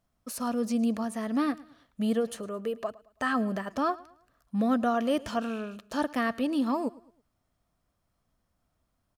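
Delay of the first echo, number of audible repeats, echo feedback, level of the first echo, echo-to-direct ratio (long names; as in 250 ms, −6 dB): 109 ms, 2, 37%, −21.0 dB, −20.5 dB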